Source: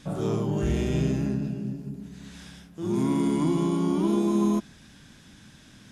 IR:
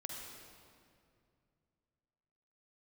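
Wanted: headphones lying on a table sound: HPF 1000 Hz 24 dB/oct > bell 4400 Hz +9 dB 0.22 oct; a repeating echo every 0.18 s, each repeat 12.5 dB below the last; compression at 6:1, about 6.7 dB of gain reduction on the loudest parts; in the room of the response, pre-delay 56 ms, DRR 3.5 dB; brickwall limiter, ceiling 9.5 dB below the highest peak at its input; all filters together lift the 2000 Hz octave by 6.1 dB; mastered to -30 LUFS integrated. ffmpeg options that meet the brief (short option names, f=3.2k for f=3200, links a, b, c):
-filter_complex "[0:a]equalizer=f=2k:t=o:g=7.5,acompressor=threshold=-27dB:ratio=6,alimiter=level_in=4dB:limit=-24dB:level=0:latency=1,volume=-4dB,aecho=1:1:180|360|540:0.237|0.0569|0.0137,asplit=2[a][b];[1:a]atrim=start_sample=2205,adelay=56[c];[b][c]afir=irnorm=-1:irlink=0,volume=-2dB[d];[a][d]amix=inputs=2:normalize=0,highpass=f=1k:w=0.5412,highpass=f=1k:w=1.3066,equalizer=f=4.4k:t=o:w=0.22:g=9,volume=17dB"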